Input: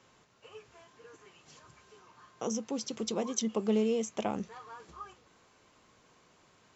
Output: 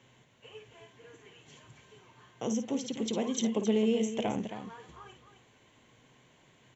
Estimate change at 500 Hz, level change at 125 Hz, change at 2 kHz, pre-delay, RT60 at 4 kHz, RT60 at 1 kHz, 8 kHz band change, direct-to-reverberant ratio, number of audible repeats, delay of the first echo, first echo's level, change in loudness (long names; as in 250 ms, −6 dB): +1.0 dB, +3.0 dB, +2.5 dB, no reverb audible, no reverb audible, no reverb audible, can't be measured, no reverb audible, 2, 54 ms, −10.0 dB, +2.0 dB